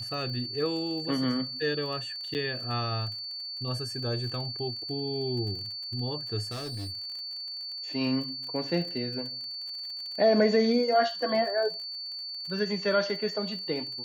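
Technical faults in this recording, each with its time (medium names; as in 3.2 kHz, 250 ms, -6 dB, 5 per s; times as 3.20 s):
crackle 40 per s -38 dBFS
whine 4.5 kHz -35 dBFS
2.34–2.35 s: dropout 8.6 ms
6.51–7.10 s: clipped -33 dBFS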